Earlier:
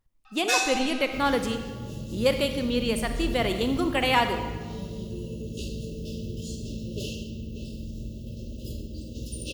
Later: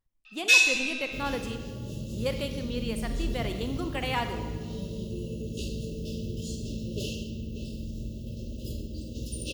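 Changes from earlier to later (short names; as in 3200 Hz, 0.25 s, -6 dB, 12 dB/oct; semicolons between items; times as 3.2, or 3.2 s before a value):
speech -8.0 dB; first sound: add resonant high-pass 2700 Hz, resonance Q 3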